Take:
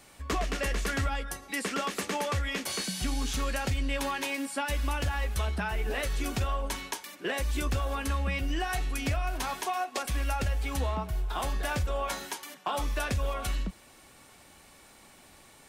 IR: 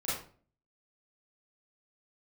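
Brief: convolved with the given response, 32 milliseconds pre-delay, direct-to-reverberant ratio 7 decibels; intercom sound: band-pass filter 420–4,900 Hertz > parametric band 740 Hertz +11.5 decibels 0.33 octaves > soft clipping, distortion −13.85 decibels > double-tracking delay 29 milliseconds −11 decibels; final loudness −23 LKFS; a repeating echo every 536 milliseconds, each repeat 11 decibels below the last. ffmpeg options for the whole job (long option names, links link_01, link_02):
-filter_complex "[0:a]aecho=1:1:536|1072|1608:0.282|0.0789|0.0221,asplit=2[link_01][link_02];[1:a]atrim=start_sample=2205,adelay=32[link_03];[link_02][link_03]afir=irnorm=-1:irlink=0,volume=-12.5dB[link_04];[link_01][link_04]amix=inputs=2:normalize=0,highpass=420,lowpass=4900,equalizer=frequency=740:width_type=o:width=0.33:gain=11.5,asoftclip=threshold=-23.5dB,asplit=2[link_05][link_06];[link_06]adelay=29,volume=-11dB[link_07];[link_05][link_07]amix=inputs=2:normalize=0,volume=9.5dB"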